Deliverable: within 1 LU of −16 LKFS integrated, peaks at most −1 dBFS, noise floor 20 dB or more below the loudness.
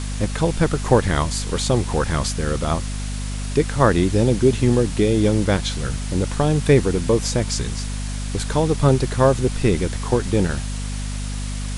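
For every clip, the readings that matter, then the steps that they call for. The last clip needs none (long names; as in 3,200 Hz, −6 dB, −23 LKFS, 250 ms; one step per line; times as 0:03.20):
mains hum 50 Hz; hum harmonics up to 250 Hz; level of the hum −24 dBFS; background noise floor −27 dBFS; target noise floor −41 dBFS; integrated loudness −20.5 LKFS; sample peak −1.5 dBFS; target loudness −16.0 LKFS
→ hum removal 50 Hz, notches 5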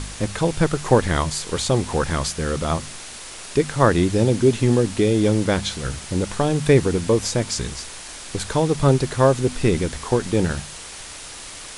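mains hum none found; background noise floor −37 dBFS; target noise floor −41 dBFS
→ broadband denoise 6 dB, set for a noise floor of −37 dBFS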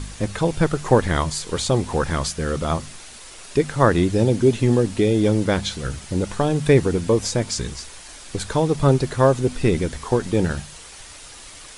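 background noise floor −41 dBFS; integrated loudness −21.0 LKFS; sample peak −2.5 dBFS; target loudness −16.0 LKFS
→ level +5 dB
brickwall limiter −1 dBFS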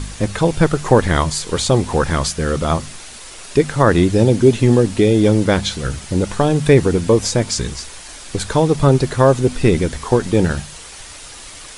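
integrated loudness −16.0 LKFS; sample peak −1.0 dBFS; background noise floor −36 dBFS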